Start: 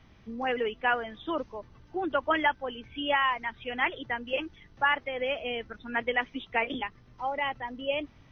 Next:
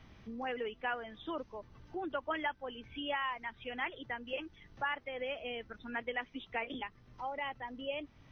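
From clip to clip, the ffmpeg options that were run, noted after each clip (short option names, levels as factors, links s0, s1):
-af "acompressor=threshold=0.00282:ratio=1.5"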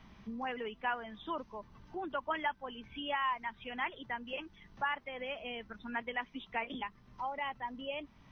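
-af "equalizer=f=100:t=o:w=0.33:g=-9,equalizer=f=200:t=o:w=0.33:g=7,equalizer=f=315:t=o:w=0.33:g=-3,equalizer=f=500:t=o:w=0.33:g=-4,equalizer=f=1000:t=o:w=0.33:g=6"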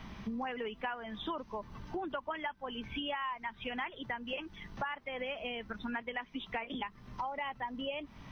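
-af "acompressor=threshold=0.00562:ratio=6,volume=2.99"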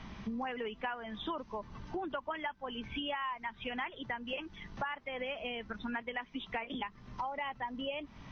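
-af "aresample=16000,aresample=44100"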